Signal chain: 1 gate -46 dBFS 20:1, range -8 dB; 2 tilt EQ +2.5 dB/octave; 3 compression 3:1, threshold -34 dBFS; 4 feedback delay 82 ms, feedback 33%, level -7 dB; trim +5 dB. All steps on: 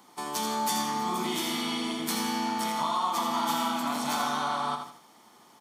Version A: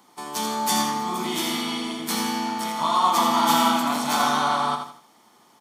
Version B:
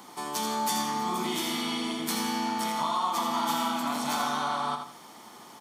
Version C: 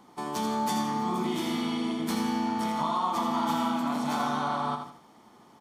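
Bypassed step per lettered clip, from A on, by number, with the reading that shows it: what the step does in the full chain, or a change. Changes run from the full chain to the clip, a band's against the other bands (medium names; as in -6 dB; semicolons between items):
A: 3, mean gain reduction 4.5 dB; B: 1, momentary loudness spread change +5 LU; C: 2, 8 kHz band -8.0 dB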